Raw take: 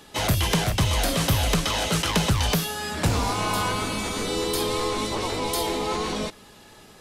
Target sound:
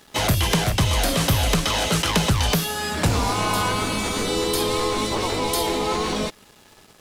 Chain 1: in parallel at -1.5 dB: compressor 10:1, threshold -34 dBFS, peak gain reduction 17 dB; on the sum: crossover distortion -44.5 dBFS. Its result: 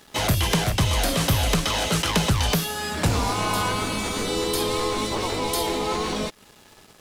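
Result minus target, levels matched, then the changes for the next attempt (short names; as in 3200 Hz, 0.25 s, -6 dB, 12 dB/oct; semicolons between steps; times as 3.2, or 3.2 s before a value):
compressor: peak gain reduction +7 dB
change: compressor 10:1, threshold -26 dBFS, peak gain reduction 10 dB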